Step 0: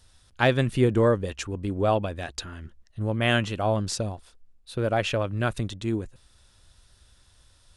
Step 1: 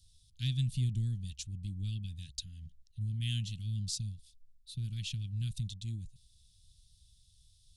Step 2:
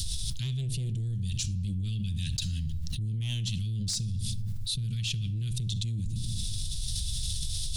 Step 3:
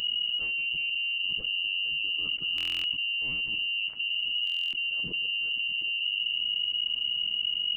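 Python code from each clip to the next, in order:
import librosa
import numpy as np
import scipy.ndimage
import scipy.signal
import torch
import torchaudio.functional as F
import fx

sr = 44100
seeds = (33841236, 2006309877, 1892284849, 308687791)

y1 = scipy.signal.sosfilt(scipy.signal.cheby1(3, 1.0, [160.0, 3600.0], 'bandstop', fs=sr, output='sos'), x)
y1 = F.gain(torch.from_numpy(y1), -5.0).numpy()
y2 = 10.0 ** (-28.5 / 20.0) * np.tanh(y1 / 10.0 ** (-28.5 / 20.0))
y2 = fx.room_shoebox(y2, sr, seeds[0], volume_m3=2600.0, walls='furnished', distance_m=0.63)
y2 = fx.env_flatten(y2, sr, amount_pct=100)
y3 = fx.freq_invert(y2, sr, carrier_hz=2900)
y3 = fx.buffer_glitch(y3, sr, at_s=(2.56, 4.45), block=1024, repeats=11)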